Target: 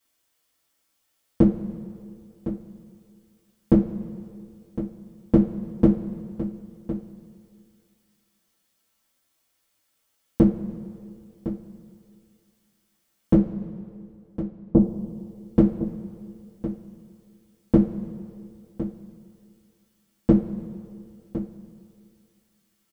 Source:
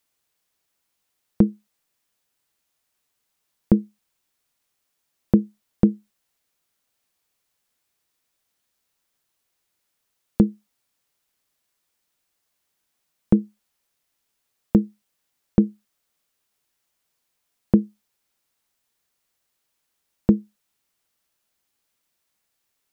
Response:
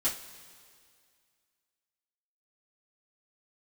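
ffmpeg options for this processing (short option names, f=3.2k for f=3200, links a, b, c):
-filter_complex "[0:a]asettb=1/sr,asplit=3[a][b][c];[a]atrim=end=13.334[d];[b]atrim=start=13.33:end=14.79,asetpts=PTS-STARTPTS,afade=t=in:d=0.004:c=qsin,afade=t=out:st=1.456:d=0.004:c=qsin,lowpass=f=1k:w=0.5412,lowpass=f=1k:w=1.3066[e];[c]atrim=start=14.786[f];[d][e]acrossfade=d=0.004:c1=hsin:c2=qsin[g];[g][f]acrossfade=d=0.004:c1=qsin:c2=hsin,aecho=1:1:1059:0.237[h];[1:a]atrim=start_sample=2205[i];[h][i]afir=irnorm=-1:irlink=0,volume=-2.5dB"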